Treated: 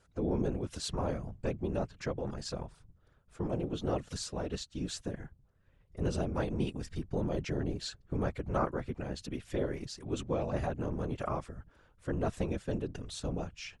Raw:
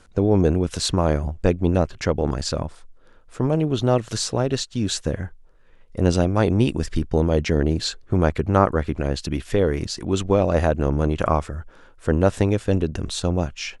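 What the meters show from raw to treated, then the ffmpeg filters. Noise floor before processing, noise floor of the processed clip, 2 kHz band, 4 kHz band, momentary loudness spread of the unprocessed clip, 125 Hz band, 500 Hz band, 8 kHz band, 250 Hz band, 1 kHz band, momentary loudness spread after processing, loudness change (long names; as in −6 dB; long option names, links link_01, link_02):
−50 dBFS, −67 dBFS, −14.0 dB, −14.0 dB, 8 LU, −15.0 dB, −14.5 dB, −14.0 dB, −14.0 dB, −13.5 dB, 8 LU, −14.5 dB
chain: -af "afftfilt=real='hypot(re,im)*cos(2*PI*random(0))':imag='hypot(re,im)*sin(2*PI*random(1))':win_size=512:overlap=0.75,volume=-8dB"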